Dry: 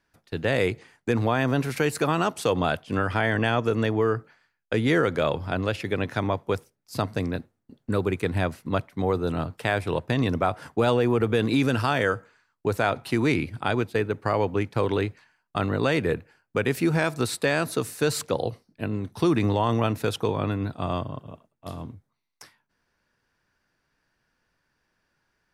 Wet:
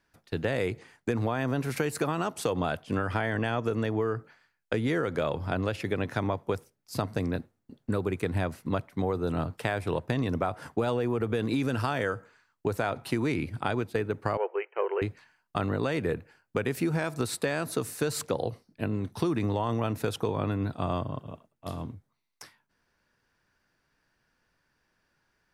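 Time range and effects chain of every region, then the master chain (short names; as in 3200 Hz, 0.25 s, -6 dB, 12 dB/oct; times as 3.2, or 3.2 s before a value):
14.37–15.02 self-modulated delay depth 0.051 ms + brick-wall FIR band-pass 350–3100 Hz + three-band expander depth 100%
whole clip: dynamic EQ 3300 Hz, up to -3 dB, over -43 dBFS, Q 0.72; compressor, threshold -24 dBFS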